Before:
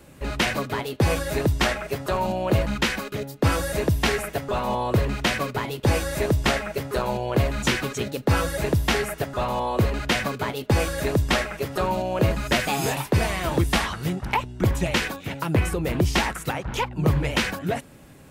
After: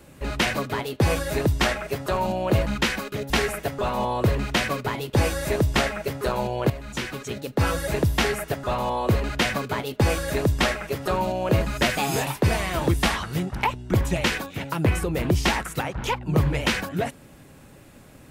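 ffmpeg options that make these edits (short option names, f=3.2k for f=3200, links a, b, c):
-filter_complex "[0:a]asplit=3[a][b][c];[a]atrim=end=3.302[d];[b]atrim=start=3.998:end=7.4,asetpts=PTS-STARTPTS,afade=t=out:st=3.398:d=0.004:c=hsin:silence=0.223872[e];[c]atrim=start=7.4,asetpts=PTS-STARTPTS,afade=t=in:d=1.16:silence=0.223872[f];[e][f]concat=n=2:v=0:a=1[g];[d][g]acrossfade=d=0.004:c1=hsin:c2=hsin"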